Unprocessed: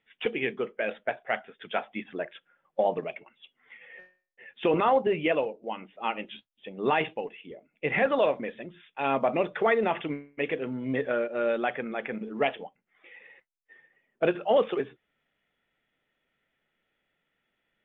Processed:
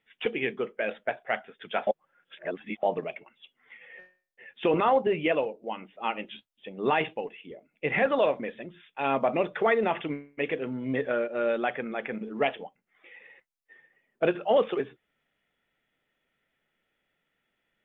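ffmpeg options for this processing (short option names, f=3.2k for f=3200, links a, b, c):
-filter_complex "[0:a]asplit=3[a][b][c];[a]atrim=end=1.872[d];[b]atrim=start=1.868:end=2.832,asetpts=PTS-STARTPTS,areverse[e];[c]atrim=start=2.828[f];[d][e]acrossfade=d=0.004:c1=hsin:c2=hsin[g];[g][f]acrossfade=d=0.004:c1=hsin:c2=hsin"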